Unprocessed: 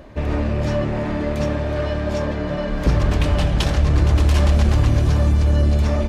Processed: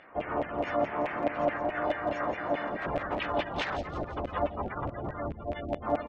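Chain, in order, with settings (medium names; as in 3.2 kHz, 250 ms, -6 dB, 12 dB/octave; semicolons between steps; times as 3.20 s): spectral gate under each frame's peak -30 dB strong; harmony voices -4 st -12 dB; LFO band-pass saw down 4.7 Hz 600–2300 Hz; harmony voices -12 st -6 dB, +3 st -2 dB; on a send: feedback echo behind a high-pass 170 ms, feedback 47%, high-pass 4.9 kHz, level -6 dB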